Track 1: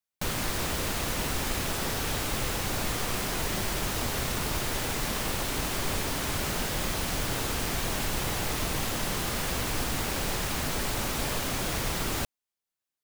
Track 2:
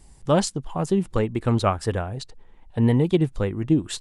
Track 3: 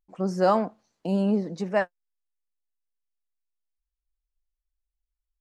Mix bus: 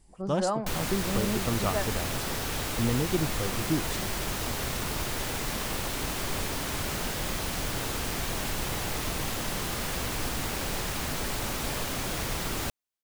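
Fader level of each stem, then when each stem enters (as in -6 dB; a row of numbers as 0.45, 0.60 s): -1.5, -9.0, -8.0 dB; 0.45, 0.00, 0.00 s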